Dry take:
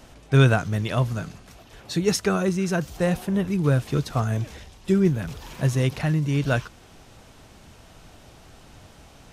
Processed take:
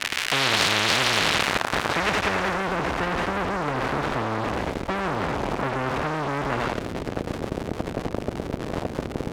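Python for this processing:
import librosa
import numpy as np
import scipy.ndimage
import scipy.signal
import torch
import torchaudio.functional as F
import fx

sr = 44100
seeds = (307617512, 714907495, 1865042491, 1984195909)

p1 = scipy.signal.medfilt(x, 41)
p2 = fx.low_shelf(p1, sr, hz=330.0, db=10.0)
p3 = p2 + fx.echo_thinned(p2, sr, ms=84, feedback_pct=84, hz=1100.0, wet_db=-5.0, dry=0)
p4 = fx.rider(p3, sr, range_db=3, speed_s=0.5)
p5 = fx.dmg_crackle(p4, sr, seeds[0], per_s=330.0, level_db=-32.0)
p6 = fx.fuzz(p5, sr, gain_db=40.0, gate_db=-35.0)
p7 = p5 + (p6 * 10.0 ** (-6.0 / 20.0))
p8 = fx.filter_sweep_bandpass(p7, sr, from_hz=2200.0, to_hz=270.0, start_s=1.17, end_s=2.8, q=1.4)
p9 = fx.spectral_comp(p8, sr, ratio=10.0)
y = p9 * 10.0 ** (2.0 / 20.0)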